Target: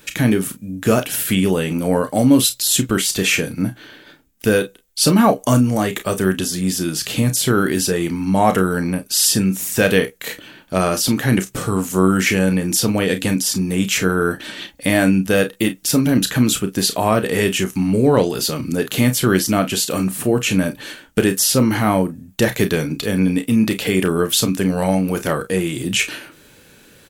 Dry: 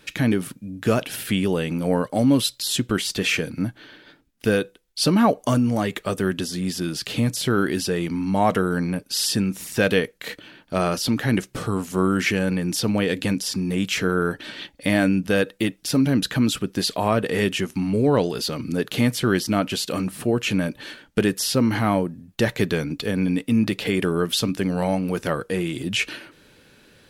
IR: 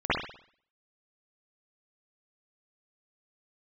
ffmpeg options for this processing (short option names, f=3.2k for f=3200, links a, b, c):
-filter_complex "[0:a]aexciter=amount=2.4:drive=4.9:freq=6.4k,asplit=2[a][b];[b]aecho=0:1:32|47:0.335|0.15[c];[a][c]amix=inputs=2:normalize=0,volume=4dB"